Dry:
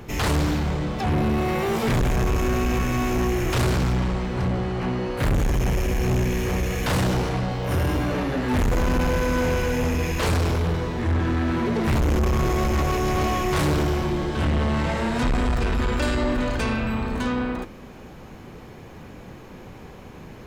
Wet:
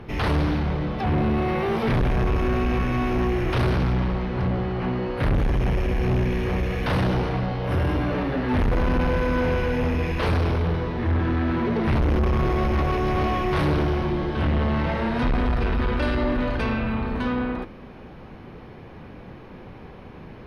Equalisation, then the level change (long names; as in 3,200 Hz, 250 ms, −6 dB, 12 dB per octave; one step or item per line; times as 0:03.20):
moving average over 6 samples
0.0 dB